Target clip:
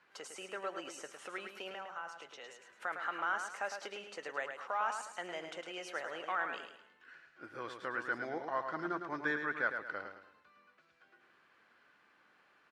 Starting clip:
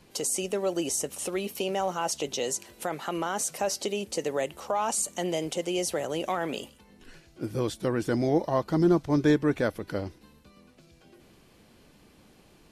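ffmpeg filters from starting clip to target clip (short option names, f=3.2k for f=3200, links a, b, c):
-filter_complex "[0:a]asettb=1/sr,asplit=3[a][b][c];[a]atrim=end=1.744[d];[b]atrim=start=1.74:end=2.75,asetpts=PTS-STARTPTS,afade=t=in:d=0.004:c=qsin,afade=t=out:st=1.006:d=0.004:c=qsin,acrossover=split=170|520[e][f][g];[e]acompressor=threshold=-52dB:ratio=4[h];[f]acompressor=threshold=-44dB:ratio=4[i];[g]acompressor=threshold=-38dB:ratio=4[j];[h][i][j]amix=inputs=3:normalize=0[k];[c]atrim=start=2.746[l];[d][k]acrossfade=d=0.004:c1=hsin:c2=qsin[m];[m][l]acrossfade=d=0.004:c1=qsin:c2=hsin,lowpass=f=1.5k:t=q:w=3.1,aderivative,aecho=1:1:107|214|321|428:0.447|0.161|0.0579|0.0208,volume=6.5dB"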